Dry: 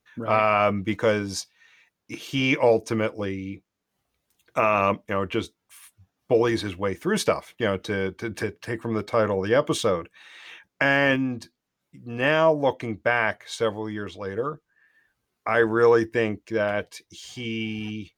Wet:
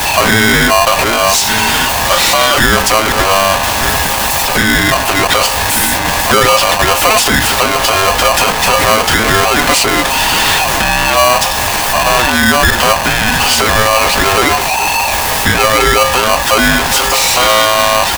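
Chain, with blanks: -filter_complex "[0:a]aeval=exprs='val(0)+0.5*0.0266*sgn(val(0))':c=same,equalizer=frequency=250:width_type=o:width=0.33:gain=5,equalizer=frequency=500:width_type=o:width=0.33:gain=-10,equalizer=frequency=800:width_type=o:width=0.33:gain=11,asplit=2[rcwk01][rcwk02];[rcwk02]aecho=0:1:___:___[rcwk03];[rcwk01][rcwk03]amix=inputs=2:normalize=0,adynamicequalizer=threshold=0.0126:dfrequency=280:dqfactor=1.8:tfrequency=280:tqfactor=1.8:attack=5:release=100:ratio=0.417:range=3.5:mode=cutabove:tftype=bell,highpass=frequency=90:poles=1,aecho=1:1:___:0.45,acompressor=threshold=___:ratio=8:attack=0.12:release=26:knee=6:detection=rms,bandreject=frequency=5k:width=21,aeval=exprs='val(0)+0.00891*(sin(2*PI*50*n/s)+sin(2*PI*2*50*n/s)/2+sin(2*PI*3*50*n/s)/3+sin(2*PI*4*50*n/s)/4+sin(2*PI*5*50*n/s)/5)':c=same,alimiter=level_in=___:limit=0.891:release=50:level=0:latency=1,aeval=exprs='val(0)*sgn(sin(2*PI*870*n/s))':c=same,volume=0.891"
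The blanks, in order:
1183, 0.0668, 6.1, 0.1, 14.1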